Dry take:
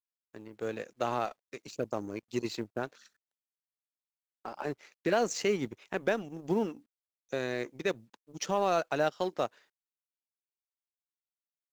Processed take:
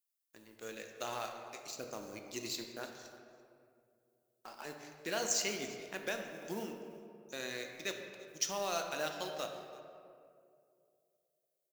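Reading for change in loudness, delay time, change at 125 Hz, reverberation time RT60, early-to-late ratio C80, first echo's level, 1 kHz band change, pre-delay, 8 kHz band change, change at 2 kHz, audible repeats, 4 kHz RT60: −6.5 dB, 338 ms, −12.0 dB, 2.4 s, 6.0 dB, −19.5 dB, −8.5 dB, 3 ms, +5.0 dB, −4.0 dB, 1, 1.2 s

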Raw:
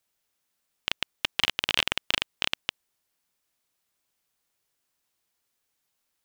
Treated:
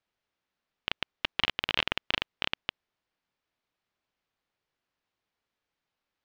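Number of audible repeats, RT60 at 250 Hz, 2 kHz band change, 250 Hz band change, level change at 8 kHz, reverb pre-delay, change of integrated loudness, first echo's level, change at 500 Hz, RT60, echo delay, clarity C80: no echo audible, no reverb audible, −2.5 dB, −0.5 dB, −15.5 dB, no reverb audible, −3.5 dB, no echo audible, −0.5 dB, no reverb audible, no echo audible, no reverb audible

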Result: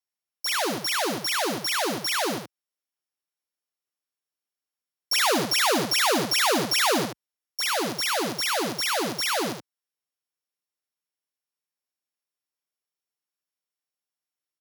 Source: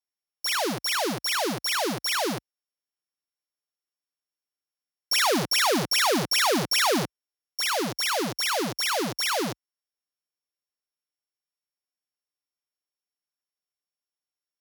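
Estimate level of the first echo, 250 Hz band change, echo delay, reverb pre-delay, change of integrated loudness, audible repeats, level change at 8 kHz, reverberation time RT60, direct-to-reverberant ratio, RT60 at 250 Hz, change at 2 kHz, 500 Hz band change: −6.5 dB, −0.5 dB, 75 ms, no reverb audible, +0.5 dB, 1, +1.0 dB, no reverb audible, no reverb audible, no reverb audible, +1.0 dB, +0.5 dB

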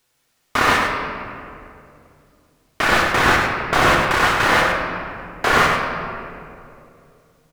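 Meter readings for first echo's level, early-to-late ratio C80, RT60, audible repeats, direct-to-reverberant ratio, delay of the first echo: −5.0 dB, 1.5 dB, 2.6 s, 1, −2.0 dB, 101 ms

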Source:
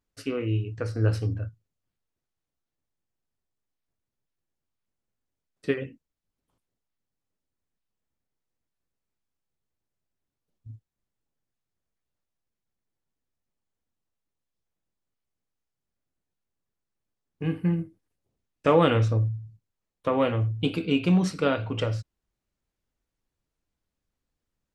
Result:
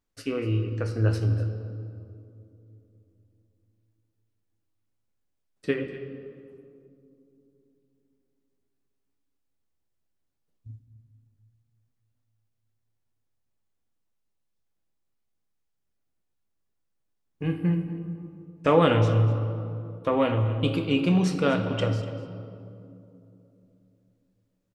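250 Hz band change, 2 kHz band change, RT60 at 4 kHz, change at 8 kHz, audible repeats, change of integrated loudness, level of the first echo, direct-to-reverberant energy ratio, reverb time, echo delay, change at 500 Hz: +1.0 dB, +1.0 dB, 1.4 s, can't be measured, 1, +0.5 dB, −17.0 dB, 7.0 dB, 2.7 s, 245 ms, +1.0 dB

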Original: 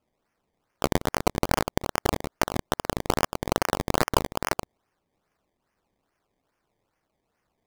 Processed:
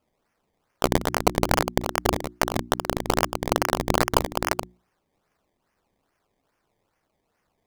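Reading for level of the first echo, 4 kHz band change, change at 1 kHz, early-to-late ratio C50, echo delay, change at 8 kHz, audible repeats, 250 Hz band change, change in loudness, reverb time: no echo audible, +3.0 dB, +3.0 dB, no reverb audible, no echo audible, +3.0 dB, no echo audible, +2.5 dB, +3.0 dB, no reverb audible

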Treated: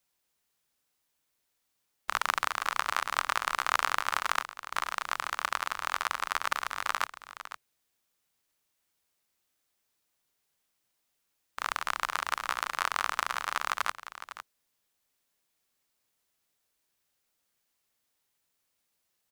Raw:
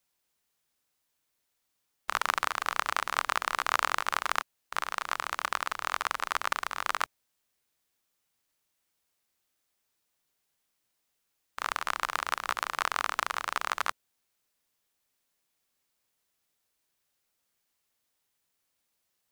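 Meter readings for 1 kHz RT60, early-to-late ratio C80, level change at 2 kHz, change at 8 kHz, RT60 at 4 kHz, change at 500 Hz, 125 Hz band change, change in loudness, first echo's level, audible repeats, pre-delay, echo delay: no reverb audible, no reverb audible, 0.0 dB, 0.0 dB, no reverb audible, −2.0 dB, can't be measured, 0.0 dB, −12.5 dB, 1, no reverb audible, 506 ms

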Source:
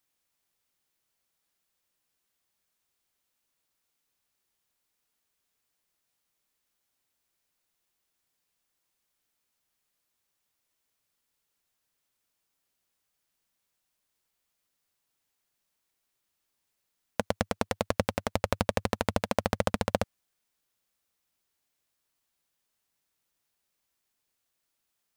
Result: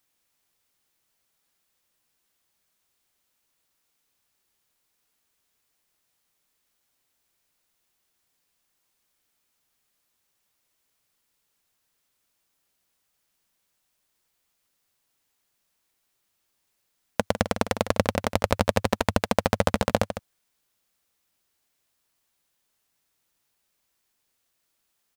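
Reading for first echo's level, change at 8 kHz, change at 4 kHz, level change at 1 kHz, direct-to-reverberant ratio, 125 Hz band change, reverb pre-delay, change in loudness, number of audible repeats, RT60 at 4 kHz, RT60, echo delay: −11.0 dB, +5.5 dB, +5.5 dB, +5.5 dB, no reverb audible, +5.5 dB, no reverb audible, +5.5 dB, 1, no reverb audible, no reverb audible, 154 ms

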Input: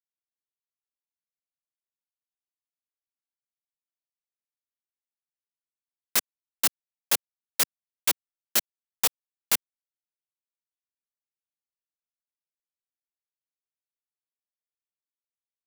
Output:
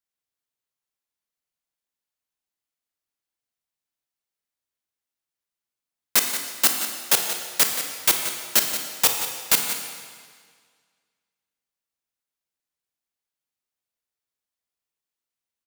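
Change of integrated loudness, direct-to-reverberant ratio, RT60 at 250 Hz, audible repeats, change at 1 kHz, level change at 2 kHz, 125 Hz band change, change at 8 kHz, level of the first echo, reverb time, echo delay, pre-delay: +5.5 dB, 3.0 dB, 1.8 s, 1, +7.0 dB, +6.5 dB, +7.0 dB, +6.5 dB, −11.0 dB, 1.8 s, 178 ms, 28 ms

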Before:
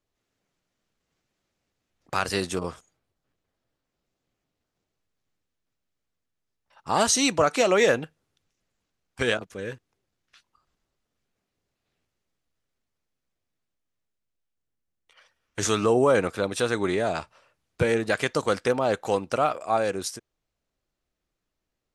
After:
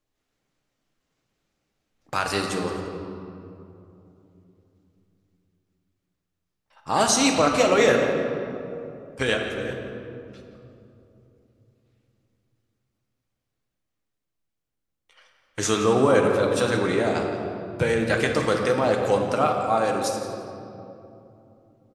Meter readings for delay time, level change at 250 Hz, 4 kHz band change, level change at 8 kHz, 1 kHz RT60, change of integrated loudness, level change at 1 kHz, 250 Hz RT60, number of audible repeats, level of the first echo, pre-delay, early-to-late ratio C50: 172 ms, +4.0 dB, +2.0 dB, +1.0 dB, 2.6 s, +1.5 dB, +3.0 dB, 4.0 s, 1, −14.5 dB, 4 ms, 3.5 dB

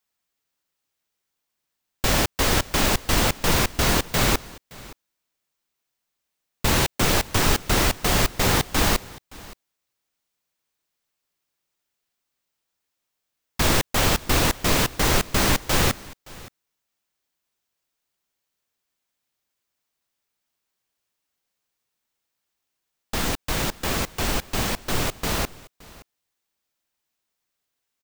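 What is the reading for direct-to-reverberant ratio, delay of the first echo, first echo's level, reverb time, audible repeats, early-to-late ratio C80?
no reverb audible, 570 ms, −21.5 dB, no reverb audible, 1, no reverb audible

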